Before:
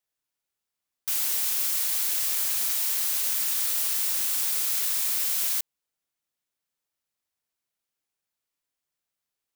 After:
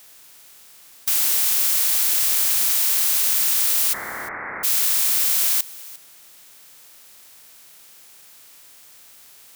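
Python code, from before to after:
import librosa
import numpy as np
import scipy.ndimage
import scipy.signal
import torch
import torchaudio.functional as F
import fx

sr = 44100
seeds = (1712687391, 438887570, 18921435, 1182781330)

p1 = fx.bin_compress(x, sr, power=0.6)
p2 = fx.steep_lowpass(p1, sr, hz=2100.0, slope=96, at=(3.92, 4.63), fade=0.02)
p3 = fx.over_compress(p2, sr, threshold_db=-33.0, ratio=-1.0)
p4 = p2 + (p3 * librosa.db_to_amplitude(-3.0))
p5 = p4 + 10.0 ** (-19.5 / 20.0) * np.pad(p4, (int(351 * sr / 1000.0), 0))[:len(p4)]
y = p5 * librosa.db_to_amplitude(2.5)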